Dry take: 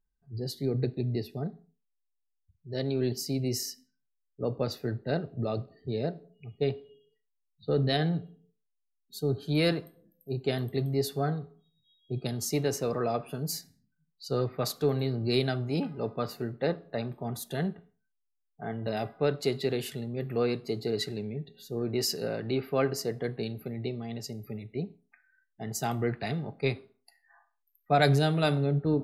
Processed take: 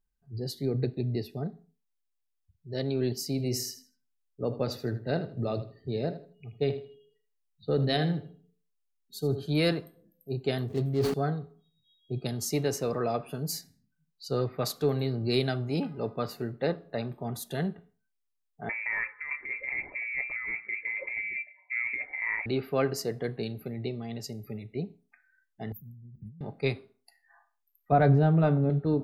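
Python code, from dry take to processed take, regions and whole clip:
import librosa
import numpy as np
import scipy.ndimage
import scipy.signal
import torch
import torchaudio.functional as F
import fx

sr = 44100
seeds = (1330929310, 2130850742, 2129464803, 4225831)

y = fx.chain(x, sr, fx.quant_float(bits=8),
    fx.echo_feedback(ms=79, feedback_pct=24, wet_db=-13), at=(3.3, 9.46))
y = fx.chain(y, sr, fx.median_filter(points=25),
    fx.sustainer(db_per_s=33.0), at=(10.68, 11.14))
y = fx.chain(y, sr, fx.highpass(hz=140.0, slope=12),
    fx.freq_invert(carrier_hz=2500),
    fx.over_compress(threshold_db=-32.0, ratio=-1.0), at=(18.69, 22.46))
y = fx.chain(y, sr, fx.cheby2_bandstop(low_hz=580.0, high_hz=7900.0, order=4, stop_db=60),
    fx.over_compress(threshold_db=-42.0, ratio=-1.0),
    fx.tilt_shelf(db=-4.5, hz=1300.0), at=(25.72, 26.41))
y = fx.chain(y, sr, fx.lowpass(hz=1300.0, slope=12),
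    fx.low_shelf(hz=150.0, db=9.0),
    fx.doubler(ms=18.0, db=-11.5), at=(27.92, 28.7))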